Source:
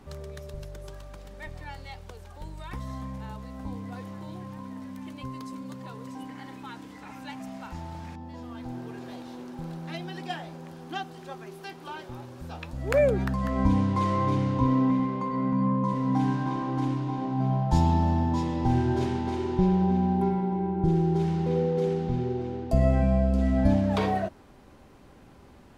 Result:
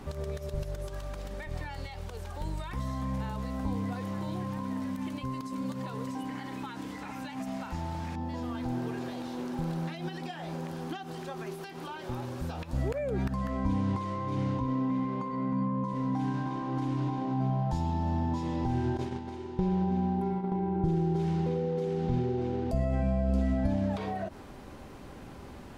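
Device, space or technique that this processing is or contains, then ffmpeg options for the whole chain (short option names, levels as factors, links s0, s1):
de-esser from a sidechain: -filter_complex "[0:a]asettb=1/sr,asplit=3[s0][s1][s2];[s0]atrim=end=18.974[s3];[s1]atrim=start=18.97:end=20.52,asetpts=PTS-STARTPTS,afade=t=in:d=0.004:c=qsin,afade=t=out:st=1.546:d=0.004:c=qsin,agate=range=0.141:threshold=0.0562:ratio=16:detection=peak[s4];[s2]atrim=start=20.516[s5];[s3][s4]acrossfade=d=0.004:c1=hsin:c2=qsin[s6];[s6][s5]acrossfade=d=0.004:c1=qsin:c2=hsin,asplit=2[s7][s8];[s8]highpass=f=5500:p=1,apad=whole_len=1136612[s9];[s7][s9]sidechaincompress=threshold=0.00141:ratio=6:attack=4.8:release=82,volume=2.11"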